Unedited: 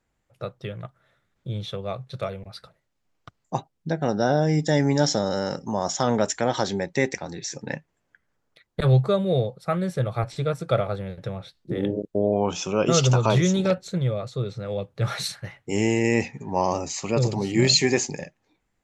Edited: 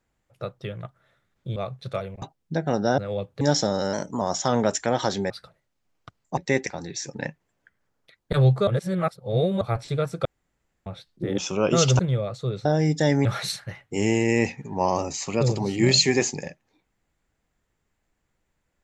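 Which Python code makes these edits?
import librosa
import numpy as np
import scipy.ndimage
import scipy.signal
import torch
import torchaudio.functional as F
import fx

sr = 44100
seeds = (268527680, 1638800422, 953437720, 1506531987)

y = fx.edit(x, sr, fx.cut(start_s=1.56, length_s=0.28),
    fx.move(start_s=2.5, length_s=1.07, to_s=6.85),
    fx.swap(start_s=4.33, length_s=0.6, other_s=14.58, other_length_s=0.43),
    fx.speed_span(start_s=5.45, length_s=0.31, speed=1.1),
    fx.reverse_span(start_s=9.15, length_s=0.94),
    fx.room_tone_fill(start_s=10.73, length_s=0.61),
    fx.cut(start_s=11.86, length_s=0.68),
    fx.cut(start_s=13.15, length_s=0.77), tone=tone)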